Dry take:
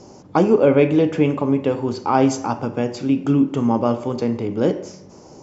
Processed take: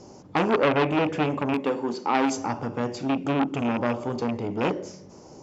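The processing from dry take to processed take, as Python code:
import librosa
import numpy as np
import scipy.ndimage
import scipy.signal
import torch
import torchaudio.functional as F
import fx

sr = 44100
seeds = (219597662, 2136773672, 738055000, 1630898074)

y = fx.rattle_buzz(x, sr, strikes_db=-19.0, level_db=-13.0)
y = fx.highpass(y, sr, hz=180.0, slope=24, at=(1.53, 2.35), fade=0.02)
y = fx.transformer_sat(y, sr, knee_hz=1400.0)
y = F.gain(torch.from_numpy(y), -3.5).numpy()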